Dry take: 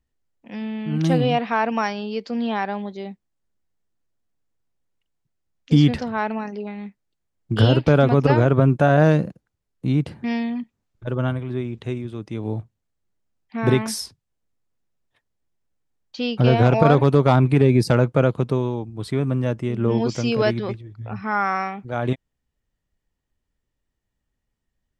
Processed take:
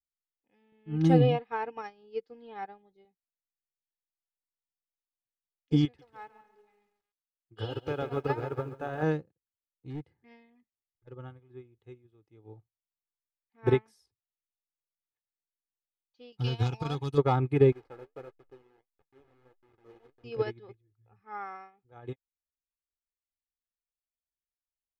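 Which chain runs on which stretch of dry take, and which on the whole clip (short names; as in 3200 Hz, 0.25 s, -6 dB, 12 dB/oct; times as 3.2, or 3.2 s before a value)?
0.72–3.05 low shelf 270 Hz +8 dB + comb 6.5 ms, depth 33%
5.85–9.03 low shelf 390 Hz -8 dB + lo-fi delay 0.139 s, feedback 55%, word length 7-bit, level -7 dB
9.9–11.14 hard clip -14.5 dBFS + bell 2000 Hz +9.5 dB 0.24 oct
16.32–17.18 EQ curve 200 Hz 0 dB, 580 Hz -14 dB, 830 Hz -4 dB, 2000 Hz -5 dB, 2900 Hz +6 dB, 5900 Hz +14 dB + backlash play -44.5 dBFS
17.72–20.24 level-crossing sampler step -19.5 dBFS + tone controls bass -11 dB, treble -15 dB + flange 1.6 Hz, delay 3.9 ms, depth 9.8 ms, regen +62%
whole clip: high shelf 3200 Hz -7.5 dB; comb 2.4 ms, depth 63%; upward expander 2.5:1, over -30 dBFS; gain -4.5 dB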